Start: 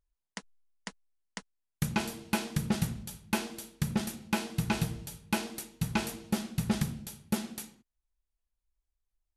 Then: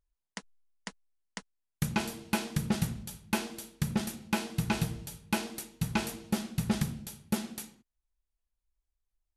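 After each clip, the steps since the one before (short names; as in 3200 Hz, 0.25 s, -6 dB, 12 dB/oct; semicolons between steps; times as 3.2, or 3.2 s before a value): nothing audible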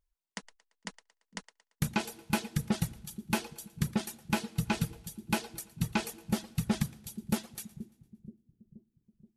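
split-band echo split 360 Hz, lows 0.477 s, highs 0.114 s, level -11 dB; reverb removal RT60 1.4 s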